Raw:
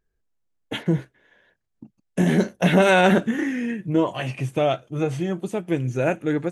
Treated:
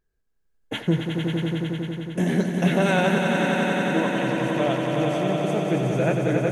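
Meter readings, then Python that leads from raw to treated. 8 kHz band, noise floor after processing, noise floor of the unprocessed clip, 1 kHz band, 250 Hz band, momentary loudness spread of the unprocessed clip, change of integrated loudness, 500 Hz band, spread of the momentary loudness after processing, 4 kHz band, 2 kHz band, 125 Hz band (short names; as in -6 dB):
0.0 dB, -69 dBFS, -75 dBFS, -1.0 dB, 0.0 dB, 11 LU, -1.0 dB, -0.5 dB, 7 LU, +0.5 dB, -0.5 dB, +1.0 dB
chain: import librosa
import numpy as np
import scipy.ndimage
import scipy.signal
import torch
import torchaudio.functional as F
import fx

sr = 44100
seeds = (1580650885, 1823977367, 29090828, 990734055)

y = fx.echo_swell(x, sr, ms=91, loudest=5, wet_db=-6.0)
y = fx.rider(y, sr, range_db=4, speed_s=2.0)
y = F.gain(torch.from_numpy(y), -4.5).numpy()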